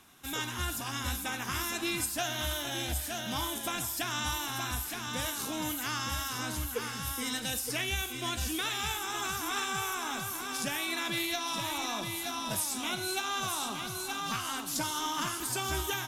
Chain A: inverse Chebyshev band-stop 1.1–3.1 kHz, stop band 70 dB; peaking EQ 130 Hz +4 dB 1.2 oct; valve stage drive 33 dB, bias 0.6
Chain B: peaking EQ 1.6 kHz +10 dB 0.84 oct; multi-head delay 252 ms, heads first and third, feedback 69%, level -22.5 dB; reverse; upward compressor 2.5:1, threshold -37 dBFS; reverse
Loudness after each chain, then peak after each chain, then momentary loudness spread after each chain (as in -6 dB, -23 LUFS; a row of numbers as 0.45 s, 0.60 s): -41.5 LUFS, -29.5 LUFS; -29.0 dBFS, -15.5 dBFS; 4 LU, 4 LU